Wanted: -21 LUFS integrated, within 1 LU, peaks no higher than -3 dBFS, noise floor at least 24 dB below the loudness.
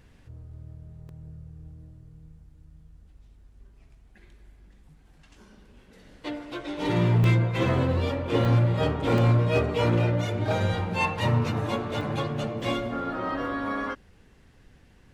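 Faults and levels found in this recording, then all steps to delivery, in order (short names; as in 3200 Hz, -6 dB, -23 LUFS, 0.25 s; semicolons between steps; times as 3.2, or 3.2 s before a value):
clipped 0.4%; flat tops at -15.0 dBFS; dropouts 7; longest dropout 1.4 ms; loudness -25.5 LUFS; peak -15.0 dBFS; loudness target -21.0 LUFS
-> clip repair -15 dBFS; interpolate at 1.09/7.24/8.45/9.18/10.53/12.01/12.61, 1.4 ms; gain +4.5 dB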